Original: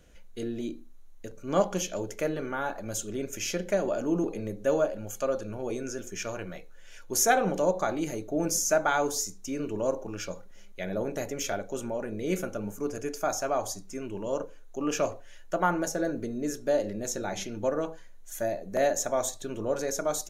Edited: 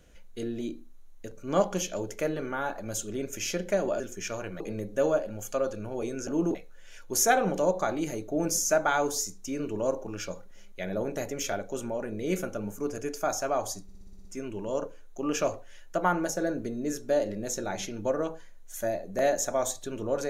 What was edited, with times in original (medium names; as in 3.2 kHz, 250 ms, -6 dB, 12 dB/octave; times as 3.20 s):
4.00–4.28 s: swap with 5.95–6.55 s
13.83 s: stutter 0.06 s, 8 plays